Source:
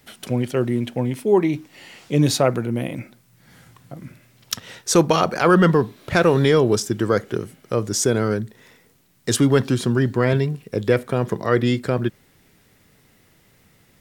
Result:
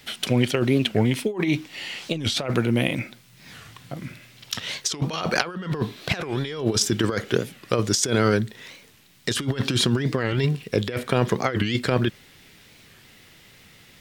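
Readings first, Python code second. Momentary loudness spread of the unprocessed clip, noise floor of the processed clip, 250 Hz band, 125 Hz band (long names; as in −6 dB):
13 LU, −52 dBFS, −4.0 dB, −3.0 dB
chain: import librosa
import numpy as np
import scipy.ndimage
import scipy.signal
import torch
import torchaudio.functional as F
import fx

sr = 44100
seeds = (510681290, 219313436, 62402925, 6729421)

y = fx.peak_eq(x, sr, hz=3300.0, db=10.0, octaves=1.9)
y = fx.over_compress(y, sr, threshold_db=-20.0, ratio=-0.5)
y = fx.record_warp(y, sr, rpm=45.0, depth_cents=250.0)
y = y * librosa.db_to_amplitude(-1.5)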